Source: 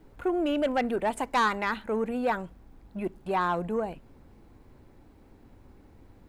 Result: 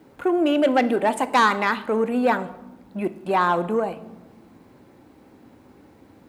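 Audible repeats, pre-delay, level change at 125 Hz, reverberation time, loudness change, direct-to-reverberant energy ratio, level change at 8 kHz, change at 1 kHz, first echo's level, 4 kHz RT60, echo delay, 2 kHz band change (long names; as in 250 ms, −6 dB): no echo audible, 3 ms, +4.5 dB, 1.1 s, +7.0 dB, 12.0 dB, +7.0 dB, +7.0 dB, no echo audible, 0.70 s, no echo audible, +7.5 dB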